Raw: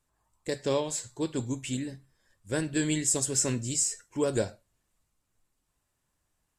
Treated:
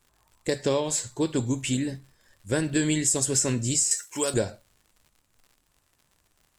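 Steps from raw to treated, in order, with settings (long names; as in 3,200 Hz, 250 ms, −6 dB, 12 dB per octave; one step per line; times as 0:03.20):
surface crackle 92 per second −54 dBFS
downward compressor 3 to 1, threshold −29 dBFS, peak gain reduction 6 dB
0:03.91–0:04.34: spectral tilt +4 dB per octave
level +7.5 dB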